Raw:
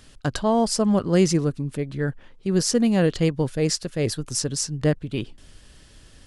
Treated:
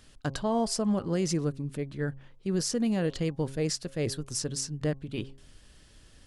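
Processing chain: peak limiter -13 dBFS, peak gain reduction 6 dB; de-hum 135.2 Hz, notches 8; trim -6 dB

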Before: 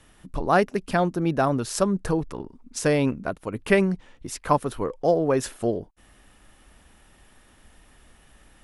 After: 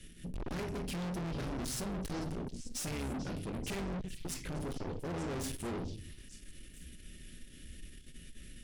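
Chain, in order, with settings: octave divider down 2 oct, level -5 dB; Butterworth band-stop 900 Hz, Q 0.52; peak limiter -17 dBFS, peak gain reduction 10 dB; simulated room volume 210 m³, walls furnished, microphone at 0.98 m; valve stage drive 40 dB, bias 0.5; 4.34–5.16 s: treble shelf 3.8 kHz -8 dB; repeats whose band climbs or falls 443 ms, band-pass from 3.9 kHz, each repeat 0.7 oct, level -8.5 dB; trim +3.5 dB

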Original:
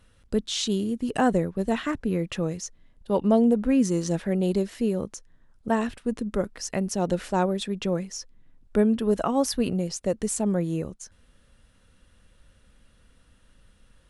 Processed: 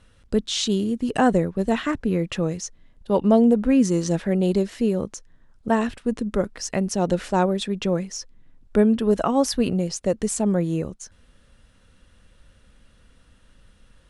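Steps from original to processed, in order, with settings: low-pass 9.7 kHz 12 dB/octave; trim +3.5 dB

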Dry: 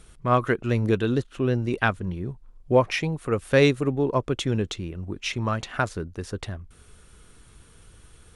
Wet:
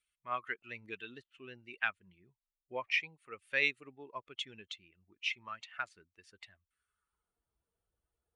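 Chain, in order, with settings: expander on every frequency bin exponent 1.5; band-pass sweep 2.4 kHz -> 640 Hz, 6.58–7.39 s

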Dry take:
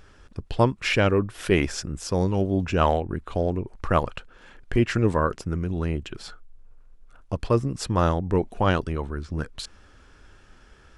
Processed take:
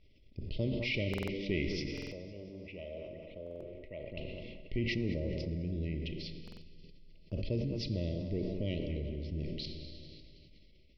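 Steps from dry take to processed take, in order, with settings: brick-wall FIR band-stop 660–1900 Hz; peaking EQ 480 Hz -5.5 dB 0.67 oct; tape echo 208 ms, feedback 44%, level -10 dB, low-pass 1.6 kHz; compression, threshold -21 dBFS, peak gain reduction 6.5 dB; steep low-pass 5.3 kHz 72 dB/octave; feedback comb 370 Hz, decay 0.37 s, harmonics all, mix 40%; gate -52 dBFS, range -8 dB; 1.87–4.12 s: three-band isolator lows -16 dB, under 560 Hz, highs -23 dB, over 2.4 kHz; Schroeder reverb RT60 2.4 s, combs from 27 ms, DRR 8 dB; buffer glitch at 1.09/1.93/3.42/6.43 s, samples 2048, times 3; decay stretcher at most 21 dB/s; trim -5 dB

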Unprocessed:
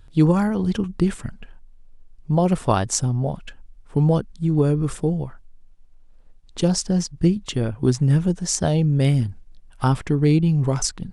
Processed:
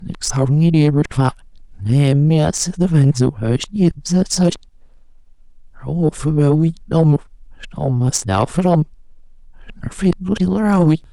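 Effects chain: reverse the whole clip; Chebyshev shaper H 3 -16 dB, 4 -29 dB, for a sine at -3 dBFS; loudness maximiser +13 dB; trim -2.5 dB

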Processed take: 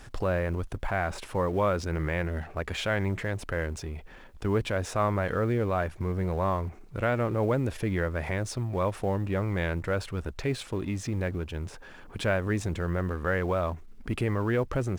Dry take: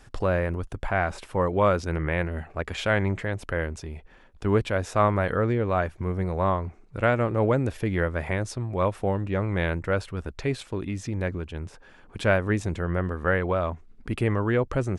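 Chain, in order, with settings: companding laws mixed up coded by mu; in parallel at +2.5 dB: peak limiter -19 dBFS, peak gain reduction 10.5 dB; on the sum: trim -9 dB

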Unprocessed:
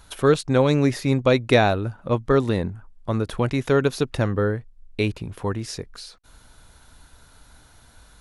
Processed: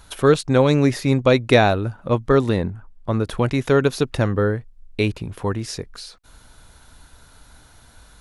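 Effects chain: 2.54–3.20 s: treble shelf 7.9 kHz -> 4.3 kHz -7.5 dB; trim +2.5 dB

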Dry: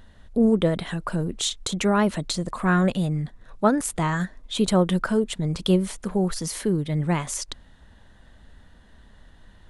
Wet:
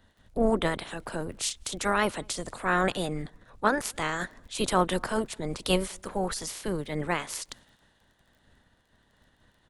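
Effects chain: spectral peaks clipped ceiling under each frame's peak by 20 dB; crackle 16 per s -35 dBFS; echo from a far wall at 36 m, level -29 dB; three bands expanded up and down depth 40%; trim -6 dB

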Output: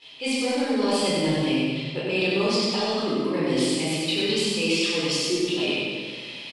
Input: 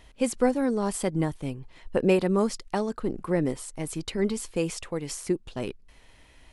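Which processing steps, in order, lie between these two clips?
Chebyshev band-pass 250–8500 Hz, order 2; high-order bell 3.5 kHz +15.5 dB 1.3 oct; gate -51 dBFS, range -11 dB; reverse; compression 6:1, threshold -32 dBFS, peak gain reduction 17 dB; reverse; flange 1 Hz, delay 6.2 ms, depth 4.3 ms, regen -79%; feedback delay 96 ms, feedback 56%, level -3 dB; simulated room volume 780 m³, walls mixed, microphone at 4.1 m; trim +5.5 dB

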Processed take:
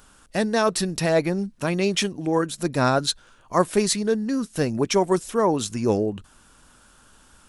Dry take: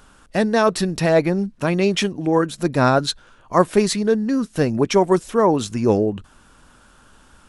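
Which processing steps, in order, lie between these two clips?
treble shelf 4.7 kHz +9 dB; trim -4.5 dB

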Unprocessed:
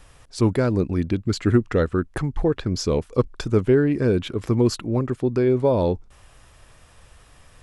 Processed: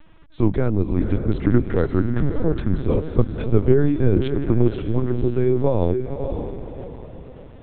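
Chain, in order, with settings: echo that smears into a reverb 543 ms, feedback 41%, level -7 dB; 1.88–4.32 s: dynamic bell 120 Hz, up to +5 dB, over -33 dBFS, Q 2.4; LPC vocoder at 8 kHz pitch kept; bass shelf 360 Hz +7.5 dB; trim -4 dB

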